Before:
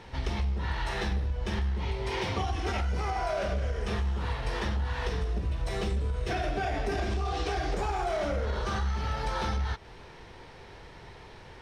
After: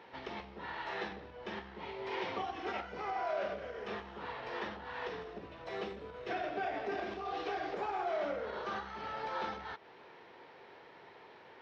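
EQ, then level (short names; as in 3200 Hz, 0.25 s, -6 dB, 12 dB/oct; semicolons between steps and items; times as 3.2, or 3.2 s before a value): Gaussian blur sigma 2.1 samples; HPF 310 Hz 12 dB/oct; -4.0 dB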